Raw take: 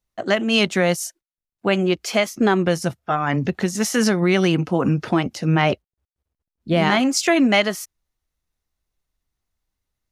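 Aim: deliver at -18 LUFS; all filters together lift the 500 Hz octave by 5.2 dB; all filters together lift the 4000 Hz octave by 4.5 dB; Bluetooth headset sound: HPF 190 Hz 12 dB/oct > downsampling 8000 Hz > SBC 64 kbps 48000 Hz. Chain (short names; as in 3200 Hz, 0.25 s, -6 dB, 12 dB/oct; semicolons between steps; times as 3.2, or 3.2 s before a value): HPF 190 Hz 12 dB/oct; bell 500 Hz +7 dB; bell 4000 Hz +6.5 dB; downsampling 8000 Hz; gain -0.5 dB; SBC 64 kbps 48000 Hz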